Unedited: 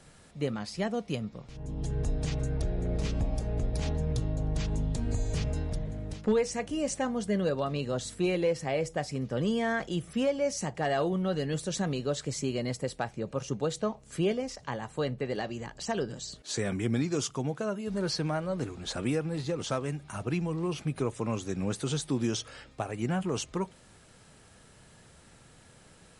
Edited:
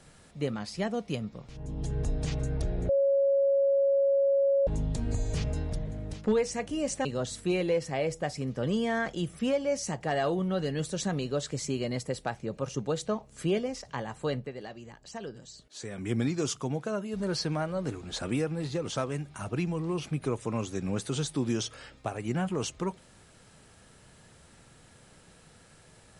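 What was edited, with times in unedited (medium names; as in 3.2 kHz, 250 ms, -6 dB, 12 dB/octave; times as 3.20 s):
2.89–4.67 s: bleep 553 Hz -21 dBFS
7.05–7.79 s: delete
15.12–16.85 s: dip -8.5 dB, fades 0.14 s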